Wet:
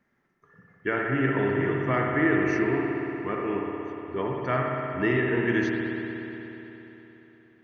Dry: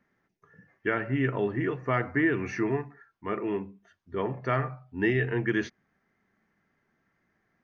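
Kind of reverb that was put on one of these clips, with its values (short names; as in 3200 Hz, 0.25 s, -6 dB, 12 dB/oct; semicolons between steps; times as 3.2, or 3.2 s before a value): spring tank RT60 3.6 s, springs 59 ms, chirp 55 ms, DRR -1 dB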